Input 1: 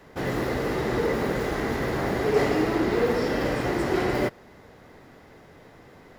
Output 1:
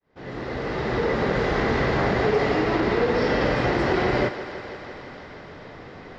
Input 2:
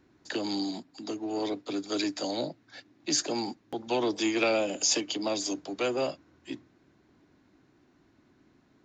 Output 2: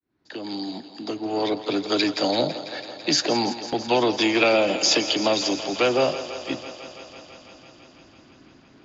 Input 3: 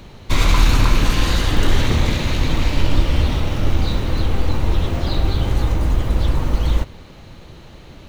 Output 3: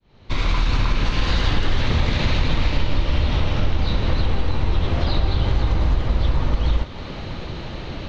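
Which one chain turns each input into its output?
fade in at the beginning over 1.74 s
low-pass filter 5,200 Hz 24 dB per octave
downward compressor 5 to 1, threshold −25 dBFS
dynamic equaliser 310 Hz, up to −4 dB, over −41 dBFS, Q 1.7
feedback echo with a high-pass in the loop 166 ms, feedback 82%, high-pass 220 Hz, level −13 dB
loudness normalisation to −23 LKFS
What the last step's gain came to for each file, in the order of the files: +8.0, +11.0, +9.5 decibels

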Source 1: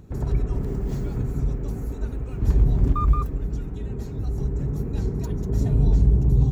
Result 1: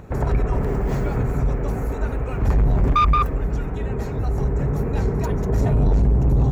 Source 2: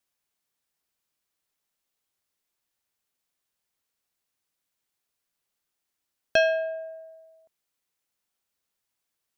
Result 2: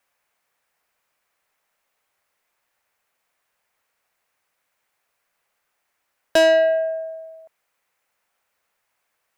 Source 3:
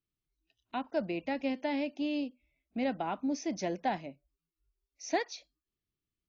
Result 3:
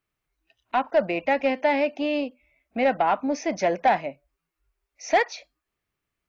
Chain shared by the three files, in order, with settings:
flat-topped bell 1,100 Hz +10 dB 2.7 octaves
soft clipping −17 dBFS
normalise the peak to −12 dBFS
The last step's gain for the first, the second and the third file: +5.0, +5.0, +5.0 decibels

